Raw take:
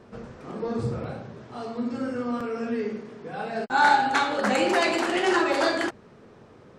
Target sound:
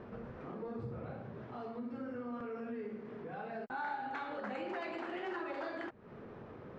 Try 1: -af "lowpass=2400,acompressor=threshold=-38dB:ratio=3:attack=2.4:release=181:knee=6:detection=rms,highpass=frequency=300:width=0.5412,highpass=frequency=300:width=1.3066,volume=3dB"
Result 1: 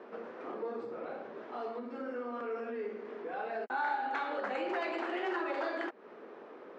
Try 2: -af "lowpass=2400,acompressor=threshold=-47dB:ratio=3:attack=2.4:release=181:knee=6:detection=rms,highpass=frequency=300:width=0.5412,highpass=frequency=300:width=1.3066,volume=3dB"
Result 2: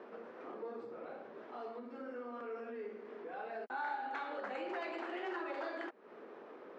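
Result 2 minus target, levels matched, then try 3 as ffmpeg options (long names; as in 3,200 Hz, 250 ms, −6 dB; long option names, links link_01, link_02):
250 Hz band −4.0 dB
-af "lowpass=2400,acompressor=threshold=-47dB:ratio=3:attack=2.4:release=181:knee=6:detection=rms,volume=3dB"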